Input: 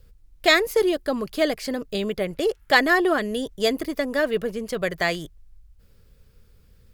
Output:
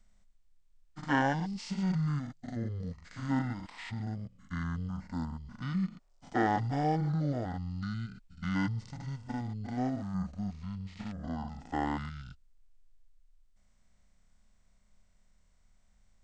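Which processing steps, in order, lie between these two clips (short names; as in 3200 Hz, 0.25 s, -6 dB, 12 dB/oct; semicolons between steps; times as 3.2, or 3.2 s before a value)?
stepped spectrum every 50 ms; speed mistake 78 rpm record played at 33 rpm; gain -9 dB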